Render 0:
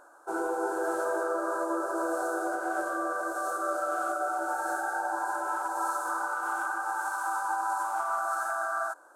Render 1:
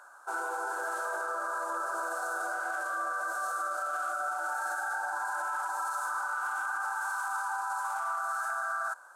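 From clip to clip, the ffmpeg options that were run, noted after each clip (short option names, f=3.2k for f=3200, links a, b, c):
-af "highpass=1.2k,highshelf=f=5.4k:g=-5.5,alimiter=level_in=8.5dB:limit=-24dB:level=0:latency=1:release=33,volume=-8.5dB,volume=7dB"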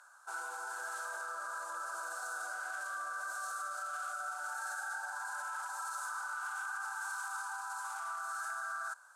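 -af "bandpass=f=5.2k:t=q:w=0.5:csg=0"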